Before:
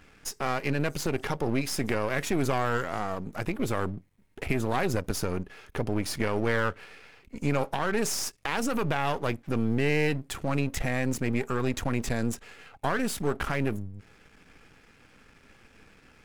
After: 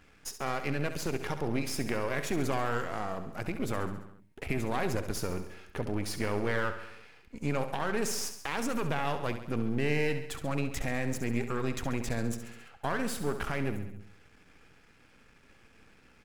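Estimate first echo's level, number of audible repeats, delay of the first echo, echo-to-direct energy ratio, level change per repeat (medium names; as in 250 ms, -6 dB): -10.5 dB, 5, 68 ms, -8.5 dB, -4.5 dB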